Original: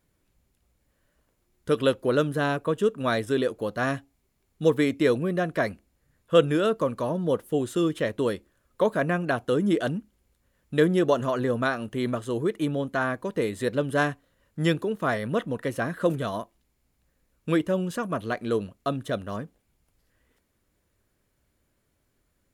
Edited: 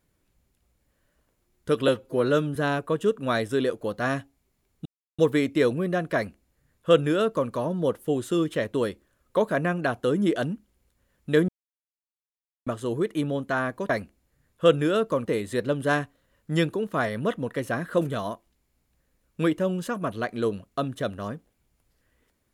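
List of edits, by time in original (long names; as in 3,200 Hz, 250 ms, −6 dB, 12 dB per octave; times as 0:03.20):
0:01.88–0:02.33: time-stretch 1.5×
0:04.63: splice in silence 0.33 s
0:05.59–0:06.95: duplicate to 0:13.34
0:10.93–0:12.11: silence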